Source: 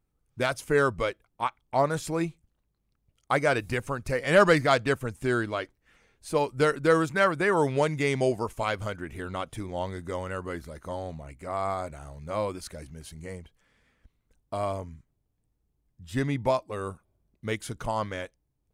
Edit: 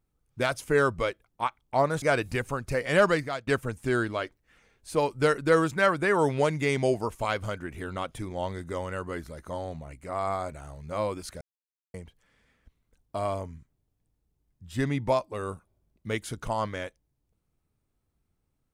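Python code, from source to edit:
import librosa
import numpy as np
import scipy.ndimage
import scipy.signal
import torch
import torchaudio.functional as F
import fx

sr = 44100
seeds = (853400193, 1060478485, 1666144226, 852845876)

y = fx.edit(x, sr, fx.cut(start_s=2.02, length_s=1.38),
    fx.fade_out_to(start_s=4.24, length_s=0.61, floor_db=-22.0),
    fx.silence(start_s=12.79, length_s=0.53), tone=tone)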